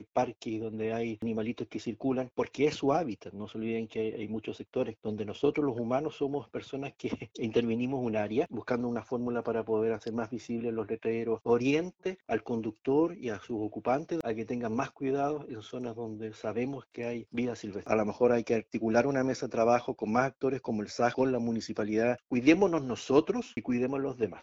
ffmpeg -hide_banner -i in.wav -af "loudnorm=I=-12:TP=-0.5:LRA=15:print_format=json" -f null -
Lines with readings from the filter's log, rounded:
"input_i" : "-31.3",
"input_tp" : "-10.1",
"input_lra" : "4.7",
"input_thresh" : "-41.3",